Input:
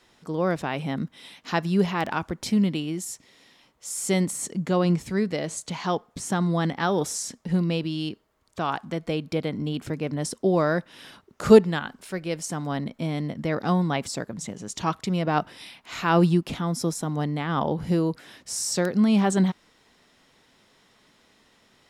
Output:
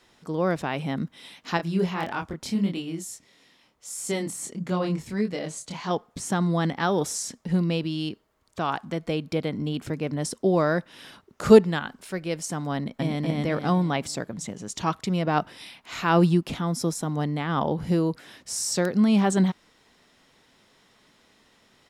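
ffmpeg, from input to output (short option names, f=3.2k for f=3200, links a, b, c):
-filter_complex "[0:a]asettb=1/sr,asplit=3[a][b][c];[a]atrim=end=1.574[d];[b]atrim=start=1.57:end=5.91,asetpts=PTS-STARTPTS,afade=t=in:d=0.004:c=qsin,afade=t=out:st=4.336:d=0.004:c=qsin,flanger=delay=22.5:depth=5:speed=1.6[e];[c]atrim=start=5.906[f];[d][e]acrossfade=d=0.004:c1=hsin:c2=qsin[g];[g][f]acrossfade=d=0.004:c1=qsin:c2=hsin,asplit=2[h][i];[i]afade=t=in:st=12.75:d=0.01,afade=t=out:st=13.22:d=0.01,aecho=0:1:240|480|720|960|1200:0.944061|0.377624|0.15105|0.0604199|0.024168[j];[h][j]amix=inputs=2:normalize=0"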